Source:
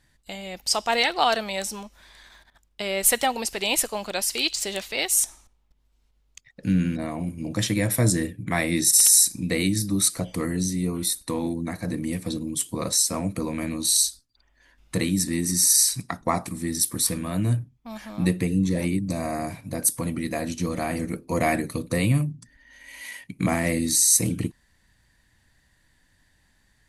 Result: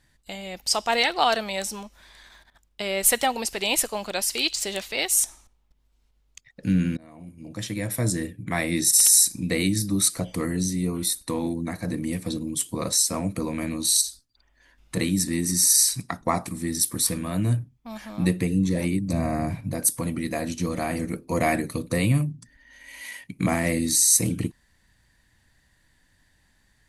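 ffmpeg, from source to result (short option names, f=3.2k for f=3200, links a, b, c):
-filter_complex "[0:a]asettb=1/sr,asplit=3[a][b][c];[a]atrim=end=14.014[d];[b]atrim=start=14.01:end=14.97,asetpts=PTS-STARTPTS,afade=t=in:d=0.004:c=qsin,afade=t=out:st=0.956:d=0.004:c=qsin,acompressor=threshold=-27dB:ratio=2.5:attack=3.2:release=140:knee=1:detection=peak[e];[c]atrim=start=14.966[f];[d][e]acrossfade=d=0.004:c1=hsin:c2=qsin[g];[g][f]acrossfade=d=0.004:c1=qsin:c2=hsin,asettb=1/sr,asplit=3[h][i][j];[h]atrim=end=19.134[k];[i]atrim=start=19.13:end=19.72,asetpts=PTS-STARTPTS,afade=t=in:d=0.004:c=qsin,afade=t=out:st=0.586:d=0.004:c=qsin,bass=f=250:g=9,treble=f=4k:g=-6[l];[j]atrim=start=19.716[m];[k][l]acrossfade=d=0.004:c1=hsin:c2=qsin[n];[n][m]acrossfade=d=0.004:c1=qsin:c2=hsin,asplit=2[o][p];[o]atrim=end=6.97,asetpts=PTS-STARTPTS,afade=t=out:st=6.966:d=0.004:c=hsin:silence=0.0749894[q];[p]atrim=start=6.97,asetpts=PTS-STARTPTS,afade=t=in:d=2.68:c=qsin:silence=0.0749894[r];[q][r]concat=n=2:v=0:a=1"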